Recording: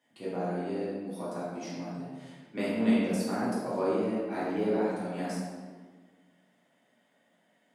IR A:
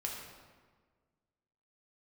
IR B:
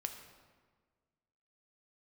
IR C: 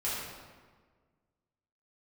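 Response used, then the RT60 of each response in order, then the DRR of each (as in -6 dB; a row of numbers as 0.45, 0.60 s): C; 1.6, 1.6, 1.5 s; -1.5, 5.0, -10.0 dB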